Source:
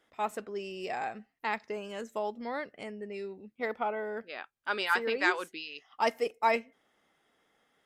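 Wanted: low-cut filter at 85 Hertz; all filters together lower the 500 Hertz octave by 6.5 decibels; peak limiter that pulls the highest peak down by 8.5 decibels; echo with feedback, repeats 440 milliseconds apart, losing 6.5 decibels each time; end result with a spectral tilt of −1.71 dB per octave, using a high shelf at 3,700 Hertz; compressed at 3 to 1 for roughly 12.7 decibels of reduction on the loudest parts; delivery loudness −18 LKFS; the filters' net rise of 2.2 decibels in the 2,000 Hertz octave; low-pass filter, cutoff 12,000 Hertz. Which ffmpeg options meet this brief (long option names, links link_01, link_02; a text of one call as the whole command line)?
ffmpeg -i in.wav -af "highpass=85,lowpass=12000,equalizer=frequency=500:width_type=o:gain=-8.5,equalizer=frequency=2000:width_type=o:gain=5.5,highshelf=frequency=3700:gain=-8.5,acompressor=threshold=-39dB:ratio=3,alimiter=level_in=8.5dB:limit=-24dB:level=0:latency=1,volume=-8.5dB,aecho=1:1:440|880|1320|1760|2200|2640:0.473|0.222|0.105|0.0491|0.0231|0.0109,volume=25.5dB" out.wav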